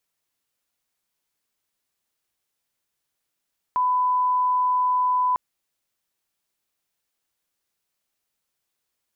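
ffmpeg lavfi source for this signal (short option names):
-f lavfi -i "sine=f=1000:d=1.6:r=44100,volume=0.06dB"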